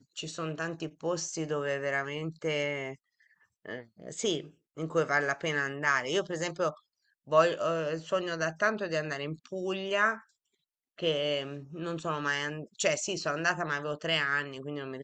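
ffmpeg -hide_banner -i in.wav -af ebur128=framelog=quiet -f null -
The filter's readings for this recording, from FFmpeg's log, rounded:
Integrated loudness:
  I:         -31.2 LUFS
  Threshold: -41.7 LUFS
Loudness range:
  LRA:         4.6 LU
  Threshold: -51.7 LUFS
  LRA low:   -34.4 LUFS
  LRA high:  -29.7 LUFS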